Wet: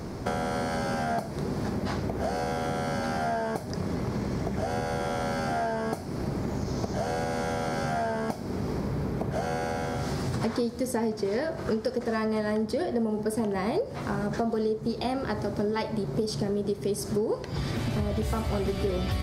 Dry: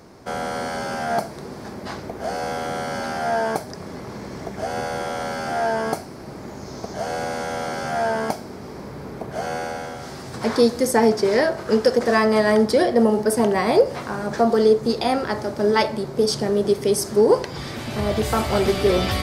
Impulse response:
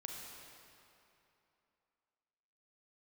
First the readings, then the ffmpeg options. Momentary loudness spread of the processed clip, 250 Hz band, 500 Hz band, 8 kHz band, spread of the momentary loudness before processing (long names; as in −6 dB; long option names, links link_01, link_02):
3 LU, −5.5 dB, −9.5 dB, −9.0 dB, 17 LU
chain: -af "lowshelf=frequency=250:gain=11,acompressor=threshold=-32dB:ratio=6,volume=5dB"